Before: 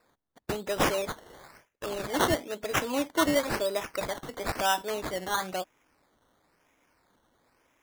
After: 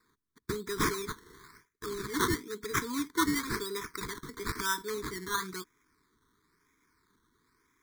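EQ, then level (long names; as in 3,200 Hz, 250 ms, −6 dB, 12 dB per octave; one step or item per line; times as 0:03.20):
elliptic band-stop filter 430–1,000 Hz, stop band 40 dB
Butterworth band-reject 2,800 Hz, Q 2.6
−1.0 dB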